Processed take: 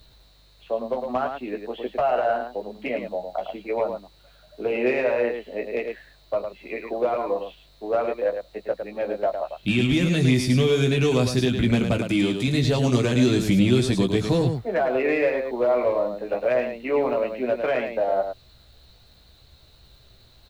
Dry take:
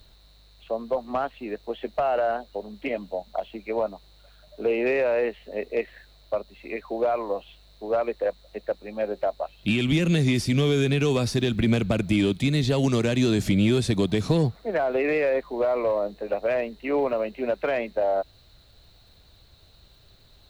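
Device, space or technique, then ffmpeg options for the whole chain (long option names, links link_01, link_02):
slapback doubling: -filter_complex "[0:a]asplit=3[link_01][link_02][link_03];[link_02]adelay=16,volume=-5.5dB[link_04];[link_03]adelay=108,volume=-6dB[link_05];[link_01][link_04][link_05]amix=inputs=3:normalize=0,asettb=1/sr,asplit=3[link_06][link_07][link_08];[link_06]atrim=end=11.984[link_09];[link_07]atrim=start=11.98:end=12.48,asetpts=PTS-STARTPTS,afade=type=in:duration=0.004:curve=qsin,afade=type=out:start_time=0.496:duration=0.004:curve=qsin,highpass=frequency=170:poles=1[link_10];[link_08]atrim=start=12.476[link_11];[link_09][link_10]acrossfade=duration=0.004:curve1=hsin:curve2=qsin[link_12];[link_12][link_11]acrossfade=duration=0.004:curve1=qsin:curve2=hsin"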